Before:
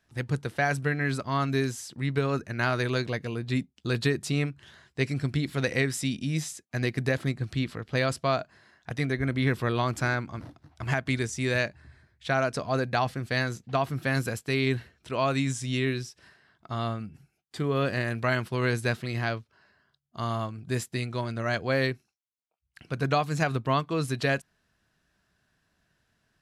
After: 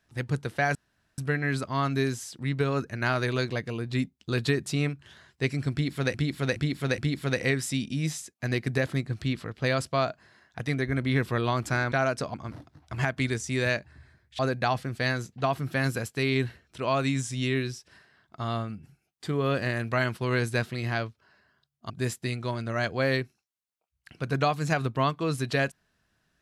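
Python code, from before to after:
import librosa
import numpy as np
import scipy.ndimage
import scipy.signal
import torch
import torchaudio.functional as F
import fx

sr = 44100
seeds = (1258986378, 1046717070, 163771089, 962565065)

y = fx.edit(x, sr, fx.insert_room_tone(at_s=0.75, length_s=0.43),
    fx.repeat(start_s=5.29, length_s=0.42, count=4),
    fx.move(start_s=12.28, length_s=0.42, to_s=10.23),
    fx.cut(start_s=20.21, length_s=0.39), tone=tone)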